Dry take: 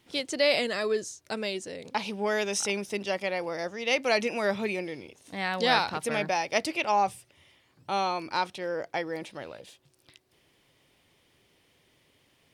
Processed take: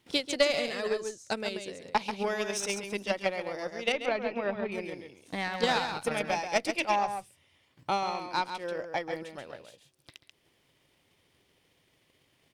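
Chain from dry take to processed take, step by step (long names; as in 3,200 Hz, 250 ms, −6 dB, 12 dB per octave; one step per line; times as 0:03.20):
one-sided soft clipper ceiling −17.5 dBFS
0:03.92–0:04.72: high-frequency loss of the air 360 metres
on a send: single-tap delay 136 ms −5 dB
on the sum: transient designer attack +10 dB, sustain −3 dB
level −4.5 dB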